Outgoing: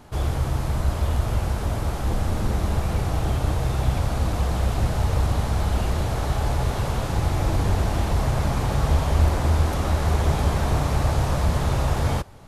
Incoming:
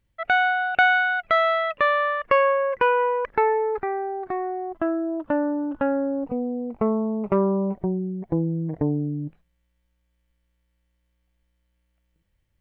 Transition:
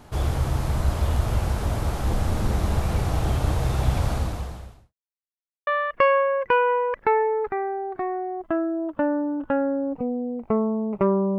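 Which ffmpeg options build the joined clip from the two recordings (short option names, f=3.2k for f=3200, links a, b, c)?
-filter_complex "[0:a]apad=whole_dur=11.38,atrim=end=11.38,asplit=2[a][b];[a]atrim=end=4.94,asetpts=PTS-STARTPTS,afade=t=out:st=4.11:d=0.83:c=qua[c];[b]atrim=start=4.94:end=5.67,asetpts=PTS-STARTPTS,volume=0[d];[1:a]atrim=start=1.98:end=7.69,asetpts=PTS-STARTPTS,afade=t=in:d=0.004:c=hsin[e];[c][d][e]concat=n=3:v=0:a=1"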